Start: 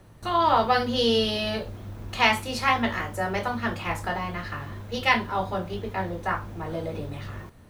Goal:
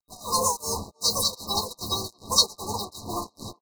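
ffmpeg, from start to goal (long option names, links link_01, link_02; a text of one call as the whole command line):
ffmpeg -i in.wav -filter_complex "[0:a]lowshelf=frequency=80:gain=5,asplit=2[link_01][link_02];[link_02]adelay=24,volume=-8dB[link_03];[link_01][link_03]amix=inputs=2:normalize=0,acrossover=split=860|910[link_04][link_05][link_06];[link_05]dynaudnorm=framelen=230:gausssize=5:maxgain=13.5dB[link_07];[link_04][link_07][link_06]amix=inputs=3:normalize=0,tremolo=f=1.2:d=0.93,asetrate=93933,aresample=44100,acrusher=bits=5:mix=0:aa=0.5,asplit=3[link_08][link_09][link_10];[link_09]asetrate=37084,aresample=44100,atempo=1.18921,volume=-9dB[link_11];[link_10]asetrate=58866,aresample=44100,atempo=0.749154,volume=-9dB[link_12];[link_08][link_11][link_12]amix=inputs=3:normalize=0,afftfilt=real='re*(1-between(b*sr/4096,1200,3800))':imag='im*(1-between(b*sr/4096,1200,3800))':win_size=4096:overlap=0.75,asplit=2[link_13][link_14];[link_14]adelay=320,highpass=300,lowpass=3400,asoftclip=type=hard:threshold=-18.5dB,volume=-22dB[link_15];[link_13][link_15]amix=inputs=2:normalize=0,adynamicequalizer=threshold=0.00708:dfrequency=2200:dqfactor=0.7:tfrequency=2200:tqfactor=0.7:attack=5:release=100:ratio=0.375:range=3:mode=boostabove:tftype=highshelf" out.wav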